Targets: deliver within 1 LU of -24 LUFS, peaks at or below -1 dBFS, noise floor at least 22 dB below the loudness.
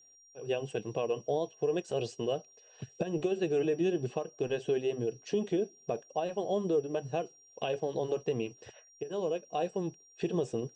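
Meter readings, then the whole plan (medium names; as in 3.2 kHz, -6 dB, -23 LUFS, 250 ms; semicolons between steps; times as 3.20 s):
steady tone 5.7 kHz; tone level -58 dBFS; loudness -33.5 LUFS; peak level -18.0 dBFS; loudness target -24.0 LUFS
-> band-stop 5.7 kHz, Q 30; trim +9.5 dB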